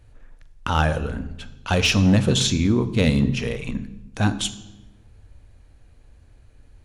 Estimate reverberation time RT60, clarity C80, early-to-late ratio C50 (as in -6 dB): 1.1 s, 16.5 dB, 15.0 dB